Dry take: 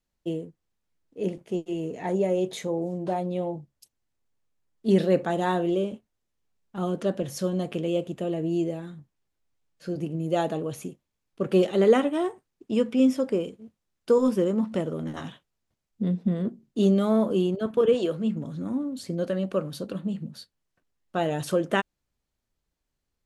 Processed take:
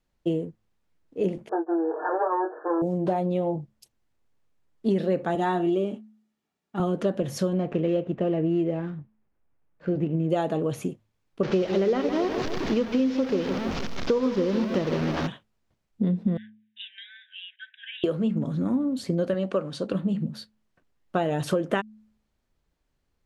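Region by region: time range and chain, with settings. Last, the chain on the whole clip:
1.49–2.82 s: comb filter that takes the minimum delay 6.4 ms + brick-wall FIR band-pass 300–1800 Hz + doubling 21 ms -5.5 dB
5.35–6.80 s: high-pass 180 Hz + comb of notches 520 Hz
7.53–10.30 s: median filter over 15 samples + low-pass 7.5 kHz 24 dB/octave + resonant high shelf 3.6 kHz -7.5 dB, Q 1.5
11.43–15.27 s: one-bit delta coder 32 kbps, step -29.5 dBFS + bit-crushed delay 157 ms, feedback 55%, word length 8-bit, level -11 dB
16.37–18.04 s: brick-wall FIR band-pass 1.5–3.9 kHz + distance through air 85 m
19.34–19.91 s: steep low-pass 9.4 kHz + bass shelf 210 Hz -9.5 dB
whole clip: treble shelf 4.7 kHz -10 dB; de-hum 107.9 Hz, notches 2; compression 6:1, threshold -28 dBFS; trim +7 dB

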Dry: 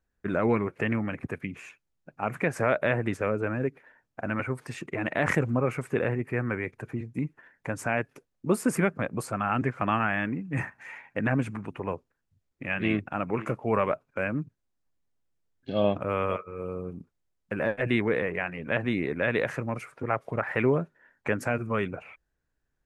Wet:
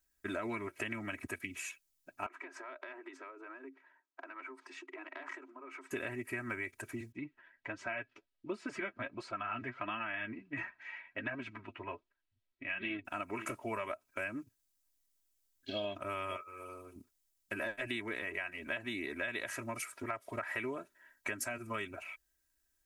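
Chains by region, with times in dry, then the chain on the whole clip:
2.26–5.91 s: compression 8:1, threshold -31 dBFS + rippled Chebyshev high-pass 260 Hz, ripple 9 dB + distance through air 170 m
7.12–13.05 s: low-pass 3.8 kHz 24 dB/octave + flange 1.4 Hz, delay 4.9 ms, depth 4.5 ms, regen +32%
16.43–16.96 s: bass shelf 450 Hz -10 dB + hum notches 60/120/180/240/300/360/420 Hz
whole clip: pre-emphasis filter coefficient 0.9; comb 3.1 ms, depth 87%; compression, threshold -44 dBFS; trim +9 dB

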